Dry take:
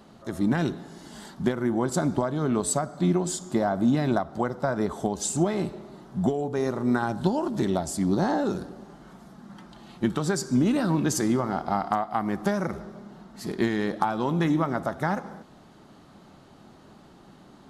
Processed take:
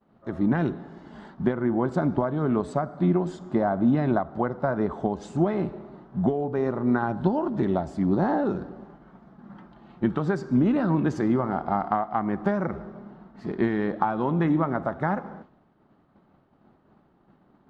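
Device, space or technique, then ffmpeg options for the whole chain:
hearing-loss simulation: -af "lowpass=1.9k,agate=range=-33dB:threshold=-43dB:ratio=3:detection=peak,volume=1dB"

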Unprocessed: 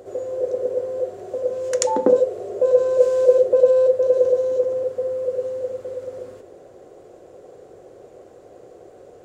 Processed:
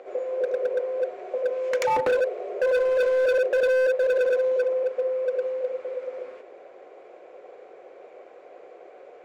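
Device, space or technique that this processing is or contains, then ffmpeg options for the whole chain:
megaphone: -af "highpass=590,lowpass=2.8k,equalizer=f=2.3k:t=o:w=0.28:g=10.5,asoftclip=type=hard:threshold=-22dB,volume=3dB"

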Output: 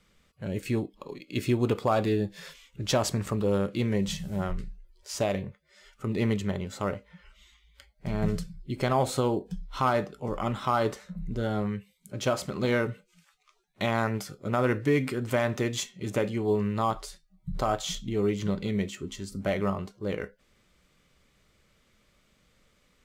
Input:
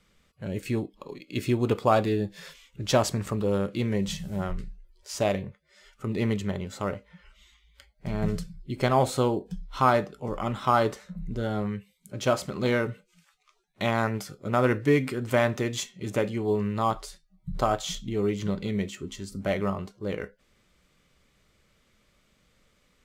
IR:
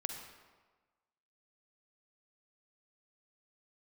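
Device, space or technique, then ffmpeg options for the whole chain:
clipper into limiter: -af "asoftclip=type=hard:threshold=-11.5dB,alimiter=limit=-15.5dB:level=0:latency=1:release=71"

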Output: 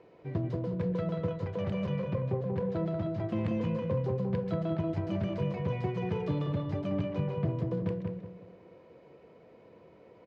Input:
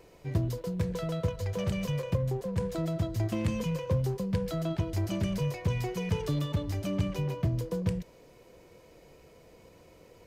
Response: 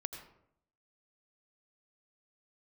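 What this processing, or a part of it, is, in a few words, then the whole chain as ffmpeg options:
phone in a pocket: -filter_complex "[0:a]asettb=1/sr,asplit=3[a][b][c];[a]atrim=end=1.864[d];[b]atrim=start=1.86:end=3.29,asetpts=PTS-STARTPTS,afade=t=in:d=0.004:c=qsin,afade=t=out:st=1.426:d=0.004:c=qsin,lowpass=6.5k[e];[c]atrim=start=3.286[f];[d][e]acrossfade=d=0.004:c1=hsin:c2=qsin[g];[g][f]acrossfade=d=0.004:c1=qsin:c2=hsin,highpass=140,lowpass=3k,highshelf=f=2.2k:g=-9,equalizer=f=4k:t=o:w=0.77:g=2.5,asplit=2[h][i];[i]adelay=186,lowpass=f=2.1k:p=1,volume=-3dB,asplit=2[j][k];[k]adelay=186,lowpass=f=2.1k:p=1,volume=0.35,asplit=2[l][m];[m]adelay=186,lowpass=f=2.1k:p=1,volume=0.35,asplit=2[n][o];[o]adelay=186,lowpass=f=2.1k:p=1,volume=0.35,asplit=2[p][q];[q]adelay=186,lowpass=f=2.1k:p=1,volume=0.35[r];[h][j][l][n][p][r]amix=inputs=6:normalize=0"

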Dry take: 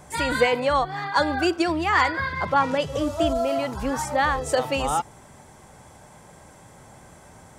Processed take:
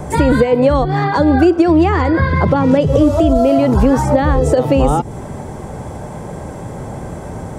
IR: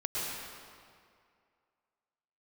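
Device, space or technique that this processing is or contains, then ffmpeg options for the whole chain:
mastering chain: -filter_complex "[0:a]asettb=1/sr,asplit=3[a][b][c];[a]atrim=end=1.614[d];[b]atrim=start=1.61:end=2.04,asetpts=PTS-STARTPTS,afade=t=in:d=0.004:c=qsin,afade=t=out:st=0.426:d=0.004:c=qsin,lowpass=11k[e];[c]atrim=start=2.036[f];[d][e]acrossfade=d=0.004:c1=hsin:c2=qsin[g];[g][f]acrossfade=d=0.004:c1=qsin:c2=hsin,equalizer=f=440:t=o:w=0.71:g=3,acrossover=split=450|2000[h][i][j];[h]acompressor=threshold=-27dB:ratio=4[k];[i]acompressor=threshold=-32dB:ratio=4[l];[j]acompressor=threshold=-38dB:ratio=4[m];[k][l][m]amix=inputs=3:normalize=0,acompressor=threshold=-30dB:ratio=2.5,tiltshelf=f=970:g=7.5,alimiter=level_in=17dB:limit=-1dB:release=50:level=0:latency=1,volume=-1dB"

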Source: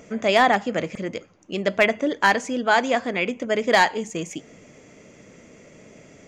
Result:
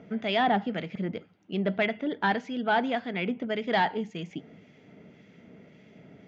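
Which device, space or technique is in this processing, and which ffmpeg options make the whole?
guitar amplifier with harmonic tremolo: -filter_complex "[0:a]asettb=1/sr,asplit=3[a][b][c];[a]atrim=end=1.624[d];[b]atrim=start=1.62:end=2.2,asetpts=PTS-STARTPTS,afade=t=in:d=0.004:c=qsin,afade=t=out:st=0.576:d=0.004:c=qsin,lowpass=5.1k[e];[c]atrim=start=2.196[f];[d][e]acrossfade=d=0.004:c1=hsin:c2=qsin[g];[g][f]acrossfade=d=0.004:c1=qsin:c2=hsin,acrossover=split=1700[h][i];[h]aeval=exprs='val(0)*(1-0.5/2+0.5/2*cos(2*PI*1.8*n/s))':c=same[j];[i]aeval=exprs='val(0)*(1-0.5/2-0.5/2*cos(2*PI*1.8*n/s))':c=same[k];[j][k]amix=inputs=2:normalize=0,asoftclip=type=tanh:threshold=-12.5dB,highpass=96,equalizer=f=180:t=q:w=4:g=4,equalizer=f=330:t=q:w=4:g=-4,equalizer=f=540:t=q:w=4:g=-9,equalizer=f=1.1k:t=q:w=4:g=-10,equalizer=f=1.8k:t=q:w=4:g=-4,equalizer=f=2.5k:t=q:w=4:g=-6,lowpass=f=3.6k:w=0.5412,lowpass=f=3.6k:w=1.3066"

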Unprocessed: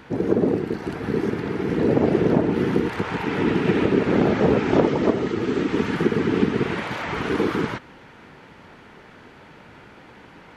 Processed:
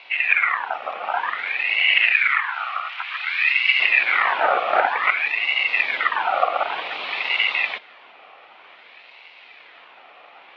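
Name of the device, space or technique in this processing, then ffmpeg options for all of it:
voice changer toy: -filter_complex "[0:a]aeval=exprs='val(0)*sin(2*PI*1700*n/s+1700*0.45/0.54*sin(2*PI*0.54*n/s))':c=same,highpass=510,equalizer=f=740:t=q:w=4:g=4,equalizer=f=1.6k:t=q:w=4:g=-5,equalizer=f=2.4k:t=q:w=4:g=5,lowpass=f=3.8k:w=0.5412,lowpass=f=3.8k:w=1.3066,asettb=1/sr,asplit=3[a][b][c];[a]atrim=end=2.124[d];[b]atrim=start=2.12:end=3.8,asetpts=PTS-STARTPTS,afade=t=in:d=0.004:c=qsin,afade=t=out:st=1.676:d=0.004:c=qsin,highpass=f=1.2k:w=0.5412,highpass=f=1.2k:w=1.3066[e];[c]atrim=start=3.796[f];[d][e]acrossfade=d=0.004:c1=hsin:c2=qsin[g];[g][f]acrossfade=d=0.004:c1=qsin:c2=hsin,volume=2.5dB"

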